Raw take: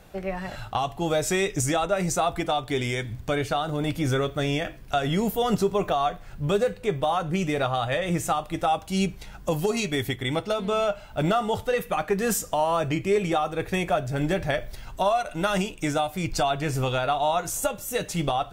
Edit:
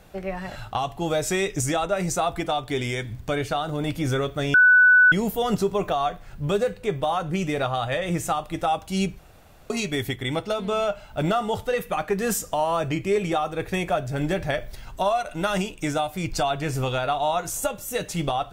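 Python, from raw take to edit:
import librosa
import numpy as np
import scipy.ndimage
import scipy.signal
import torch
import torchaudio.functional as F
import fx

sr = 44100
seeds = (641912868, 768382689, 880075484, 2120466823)

y = fx.edit(x, sr, fx.bleep(start_s=4.54, length_s=0.58, hz=1490.0, db=-11.0),
    fx.room_tone_fill(start_s=9.19, length_s=0.51), tone=tone)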